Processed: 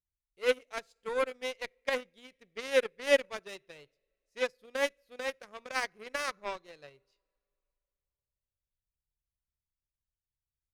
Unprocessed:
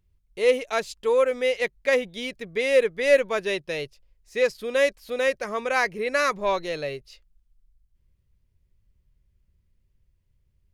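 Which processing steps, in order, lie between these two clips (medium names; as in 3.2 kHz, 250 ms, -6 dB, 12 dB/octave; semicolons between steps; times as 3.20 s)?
two-slope reverb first 0.64 s, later 3.3 s, from -16 dB, DRR 16.5 dB; Chebyshev shaper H 3 -13 dB, 5 -42 dB, 7 -27 dB, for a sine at -6.5 dBFS; trim -3 dB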